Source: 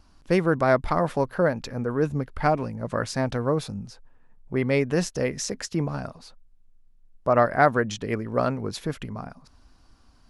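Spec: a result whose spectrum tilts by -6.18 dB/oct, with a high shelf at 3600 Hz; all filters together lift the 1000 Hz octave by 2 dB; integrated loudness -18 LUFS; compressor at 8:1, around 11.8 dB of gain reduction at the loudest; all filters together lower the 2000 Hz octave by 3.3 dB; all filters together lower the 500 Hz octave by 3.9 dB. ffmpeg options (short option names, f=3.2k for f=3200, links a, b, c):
-af "equalizer=f=500:t=o:g=-7,equalizer=f=1k:t=o:g=8,equalizer=f=2k:t=o:g=-6.5,highshelf=f=3.6k:g=-7.5,acompressor=threshold=-26dB:ratio=8,volume=15dB"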